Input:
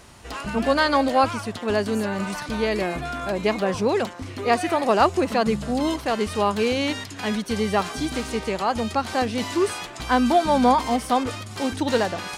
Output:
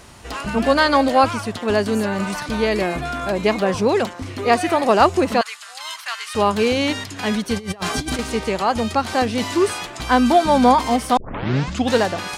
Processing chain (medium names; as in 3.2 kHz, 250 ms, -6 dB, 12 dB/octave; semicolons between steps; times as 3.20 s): 5.41–6.35 s: high-pass 1.2 kHz 24 dB/octave; 7.57–8.19 s: compressor with a negative ratio -29 dBFS, ratio -0.5; 11.17 s: tape start 0.77 s; trim +4 dB